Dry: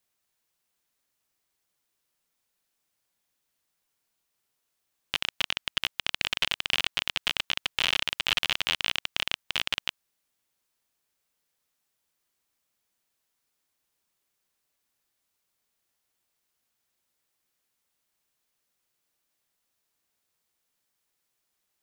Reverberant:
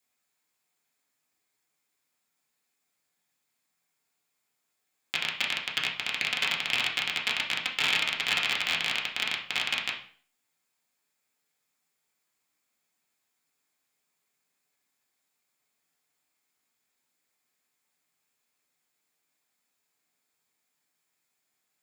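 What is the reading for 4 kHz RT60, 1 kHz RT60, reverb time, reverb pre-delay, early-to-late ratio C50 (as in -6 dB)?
0.40 s, 0.45 s, 0.45 s, 3 ms, 8.0 dB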